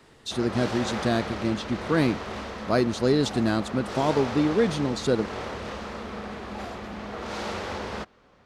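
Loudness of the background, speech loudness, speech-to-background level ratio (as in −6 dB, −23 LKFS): −34.5 LKFS, −26.0 LKFS, 8.5 dB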